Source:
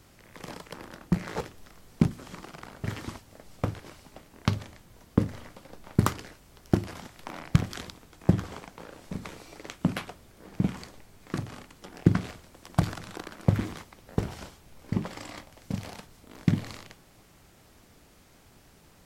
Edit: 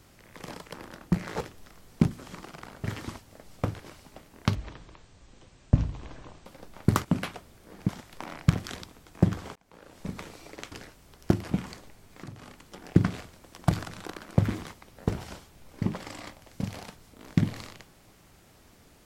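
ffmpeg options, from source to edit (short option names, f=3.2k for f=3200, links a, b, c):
-filter_complex "[0:a]asplit=9[a][b][c][d][e][f][g][h][i];[a]atrim=end=4.554[j];[b]atrim=start=4.55:end=5.56,asetpts=PTS-STARTPTS,asetrate=23373,aresample=44100[k];[c]atrim=start=5.556:end=6.152[l];[d]atrim=start=9.778:end=10.622[m];[e]atrim=start=6.948:end=8.62,asetpts=PTS-STARTPTS,afade=t=out:st=1.668:d=0.004:c=hsin[n];[f]atrim=start=8.62:end=9.782,asetpts=PTS-STARTPTS,afade=t=in:d=0.51[o];[g]atrim=start=6.148:end=6.952[p];[h]atrim=start=10.618:end=11.34,asetpts=PTS-STARTPTS,afade=t=out:st=0.718:d=0.004:c=hsin:silence=0.223872[q];[i]atrim=start=11.34,asetpts=PTS-STARTPTS,afade=t=in:d=0.37:silence=0.223872[r];[j][k]acrossfade=d=0.004:c1=hsin:c2=hsin[s];[s][l]acrossfade=d=0.004:c1=hsin:c2=hsin[t];[t][m]acrossfade=d=0.004:c1=hsin:c2=hsin[u];[n][o]concat=n=2:v=0:a=1[v];[u][v]acrossfade=d=0.004:c1=hsin:c2=hsin[w];[w][p]acrossfade=d=0.004:c1=hsin:c2=hsin[x];[q][r]concat=n=2:v=0:a=1[y];[x][y]acrossfade=d=0.004:c1=hsin:c2=hsin"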